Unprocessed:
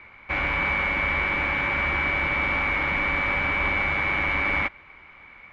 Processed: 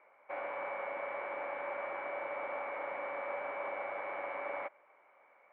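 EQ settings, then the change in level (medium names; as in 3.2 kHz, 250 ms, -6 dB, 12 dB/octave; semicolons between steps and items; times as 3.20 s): ladder band-pass 660 Hz, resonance 55%; +1.0 dB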